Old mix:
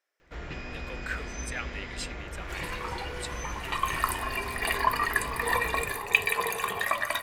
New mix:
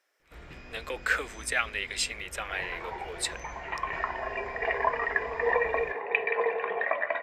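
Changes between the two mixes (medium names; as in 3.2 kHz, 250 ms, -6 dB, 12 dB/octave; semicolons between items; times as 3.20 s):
speech +8.5 dB; first sound -8.5 dB; second sound: add cabinet simulation 350–2100 Hz, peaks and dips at 470 Hz +9 dB, 680 Hz +7 dB, 1.2 kHz -9 dB, 2.1 kHz +4 dB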